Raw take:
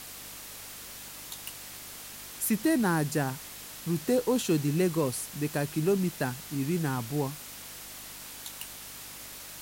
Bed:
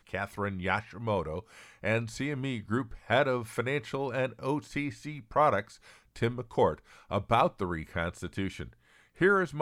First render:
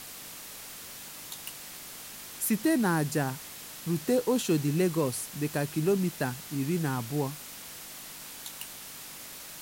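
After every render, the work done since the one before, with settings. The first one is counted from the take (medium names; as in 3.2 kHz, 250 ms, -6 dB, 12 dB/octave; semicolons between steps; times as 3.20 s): de-hum 50 Hz, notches 2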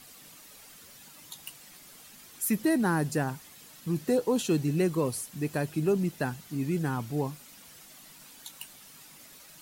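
noise reduction 10 dB, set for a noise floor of -44 dBFS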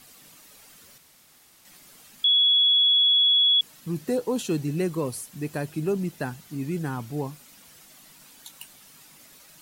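0.98–1.65 s: room tone; 2.24–3.61 s: bleep 3.37 kHz -16 dBFS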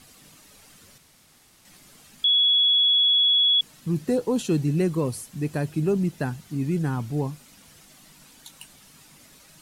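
low-pass 12 kHz 12 dB/octave; bass shelf 230 Hz +8 dB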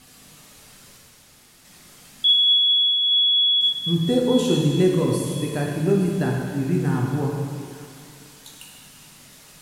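on a send: feedback echo behind a high-pass 868 ms, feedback 34%, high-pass 1.7 kHz, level -14 dB; on the sum: plate-style reverb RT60 2.2 s, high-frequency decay 1×, DRR -2 dB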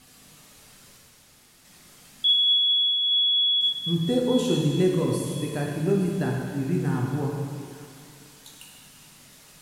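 trim -3.5 dB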